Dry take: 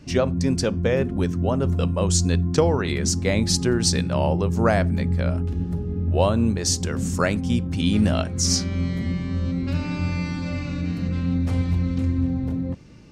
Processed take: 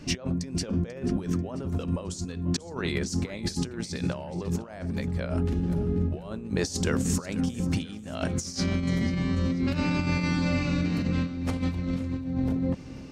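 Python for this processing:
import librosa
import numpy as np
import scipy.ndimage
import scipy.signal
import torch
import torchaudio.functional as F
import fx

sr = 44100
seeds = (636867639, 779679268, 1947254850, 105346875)

p1 = fx.peak_eq(x, sr, hz=84.0, db=-6.5, octaves=1.4)
p2 = fx.over_compress(p1, sr, threshold_db=-28.0, ratio=-0.5)
y = p2 + fx.echo_feedback(p2, sr, ms=490, feedback_pct=39, wet_db=-16.0, dry=0)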